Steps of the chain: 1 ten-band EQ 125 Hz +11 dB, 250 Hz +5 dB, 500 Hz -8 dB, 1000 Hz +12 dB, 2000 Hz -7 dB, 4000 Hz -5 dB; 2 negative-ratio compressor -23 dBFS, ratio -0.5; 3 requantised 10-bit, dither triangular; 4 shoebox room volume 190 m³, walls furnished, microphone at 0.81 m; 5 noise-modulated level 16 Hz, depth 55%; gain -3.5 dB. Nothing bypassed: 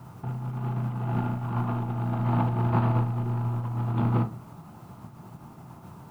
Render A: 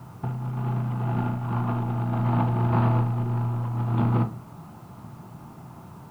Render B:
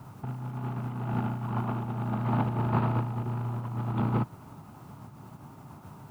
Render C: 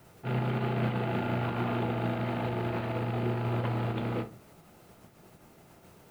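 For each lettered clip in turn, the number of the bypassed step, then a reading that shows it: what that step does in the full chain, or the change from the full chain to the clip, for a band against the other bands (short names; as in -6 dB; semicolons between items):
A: 5, loudness change +2.0 LU; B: 4, 125 Hz band -2.0 dB; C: 1, momentary loudness spread change -18 LU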